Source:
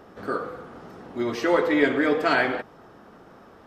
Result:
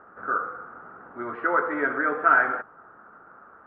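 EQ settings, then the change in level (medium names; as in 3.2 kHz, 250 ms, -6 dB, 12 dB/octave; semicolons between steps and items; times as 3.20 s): resonant low-pass 1.4 kHz, resonance Q 6.3; distance through air 460 m; bass shelf 450 Hz -9.5 dB; -2.5 dB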